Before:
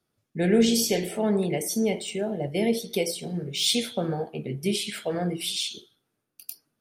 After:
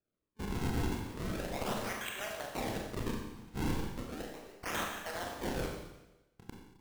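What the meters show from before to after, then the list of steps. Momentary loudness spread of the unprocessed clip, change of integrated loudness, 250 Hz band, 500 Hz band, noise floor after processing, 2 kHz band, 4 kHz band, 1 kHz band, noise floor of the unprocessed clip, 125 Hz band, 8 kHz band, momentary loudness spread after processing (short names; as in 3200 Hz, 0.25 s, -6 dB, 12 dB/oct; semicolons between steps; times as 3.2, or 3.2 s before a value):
11 LU, -12.5 dB, -13.5 dB, -14.5 dB, under -85 dBFS, -4.5 dB, -16.5 dB, -3.0 dB, -80 dBFS, -7.5 dB, -15.5 dB, 10 LU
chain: Wiener smoothing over 41 samples; Bessel high-pass 1500 Hz, order 4; resonant high shelf 6100 Hz +12.5 dB, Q 3; notch 7700 Hz, Q 6.9; transient shaper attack -1 dB, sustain +3 dB; in parallel at +3 dB: limiter -13.5 dBFS, peak gain reduction 10.5 dB; on the sum: compressor 4:1, threshold -33 dBFS, peak gain reduction 19.5 dB; decimation with a swept rate 42×, swing 160% 0.36 Hz; soft clip -34 dBFS, distortion -6 dB; Schroeder reverb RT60 1 s, combs from 29 ms, DRR 0.5 dB; gain +3 dB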